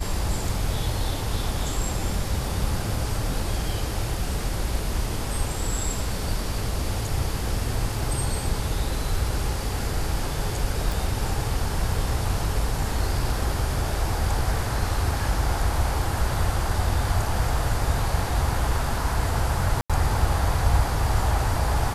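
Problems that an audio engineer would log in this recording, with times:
0:10.92: click
0:19.81–0:19.90: drop-out 86 ms

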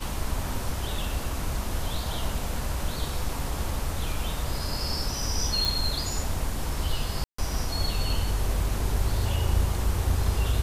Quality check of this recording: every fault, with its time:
0:05.65: click
0:07.24–0:07.38: drop-out 144 ms

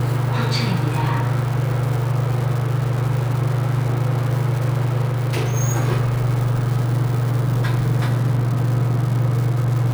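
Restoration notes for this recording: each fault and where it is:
surface crackle 330 per second −26 dBFS
0:05.04–0:05.54: clipping −16.5 dBFS

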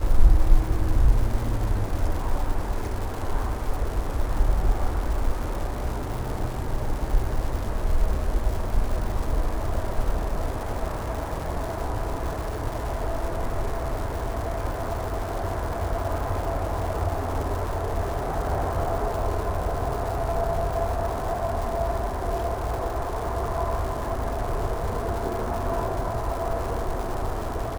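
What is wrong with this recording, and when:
surface crackle 350 per second −31 dBFS

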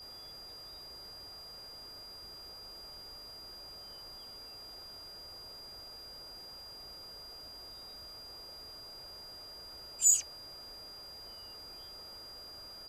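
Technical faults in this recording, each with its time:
whistle 4,800 Hz −47 dBFS

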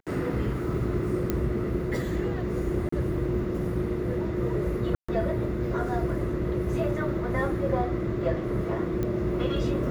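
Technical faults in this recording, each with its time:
0:01.30: click −13 dBFS
0:02.89–0:02.92: drop-out 34 ms
0:04.95–0:05.08: drop-out 135 ms
0:09.03: click −18 dBFS

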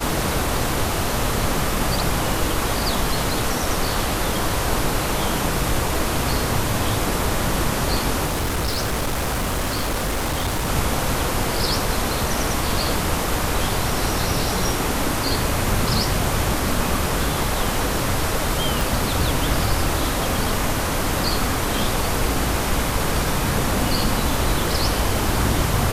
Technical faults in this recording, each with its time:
0:08.25–0:10.70: clipping −19 dBFS
0:18.81: click

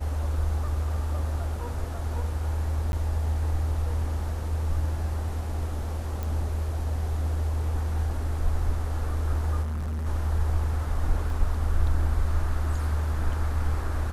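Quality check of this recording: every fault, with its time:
0:02.92–0:02.93: drop-out
0:06.23: click
0:09.62–0:10.07: clipping −27.5 dBFS
0:11.30: drop-out 2 ms

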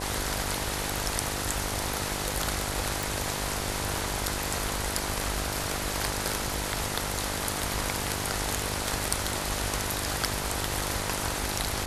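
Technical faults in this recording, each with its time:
mains buzz 50 Hz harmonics 20 −36 dBFS
0:03.03: click

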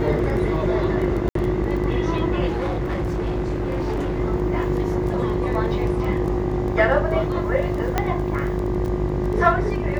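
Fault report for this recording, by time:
mains buzz 50 Hz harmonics 24 −26 dBFS
surface crackle 11 per second −27 dBFS
0:01.29–0:01.35: drop-out 63 ms
0:02.47–0:04.20: clipping −20.5 dBFS
0:07.98: click −6 dBFS

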